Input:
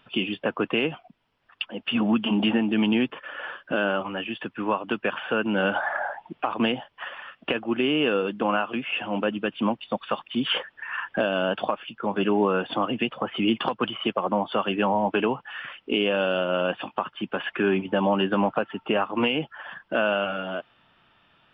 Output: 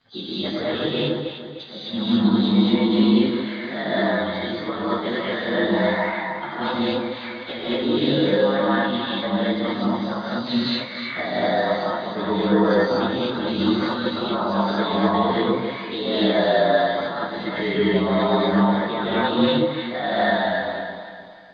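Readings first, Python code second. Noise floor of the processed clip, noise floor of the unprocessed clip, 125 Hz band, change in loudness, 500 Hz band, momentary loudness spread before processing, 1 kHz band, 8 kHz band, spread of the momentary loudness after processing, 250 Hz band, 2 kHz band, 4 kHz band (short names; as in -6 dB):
-35 dBFS, -66 dBFS, +7.5 dB, +4.0 dB, +4.5 dB, 10 LU, +3.5 dB, n/a, 10 LU, +5.5 dB, +1.5 dB, +3.5 dB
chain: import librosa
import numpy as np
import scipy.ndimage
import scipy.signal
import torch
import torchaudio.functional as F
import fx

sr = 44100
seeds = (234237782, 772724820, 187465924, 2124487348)

y = fx.partial_stretch(x, sr, pct=111)
y = fx.echo_alternate(y, sr, ms=151, hz=810.0, feedback_pct=63, wet_db=-4.5)
y = fx.rev_gated(y, sr, seeds[0], gate_ms=270, shape='rising', drr_db=-7.5)
y = y * librosa.db_to_amplitude(-3.0)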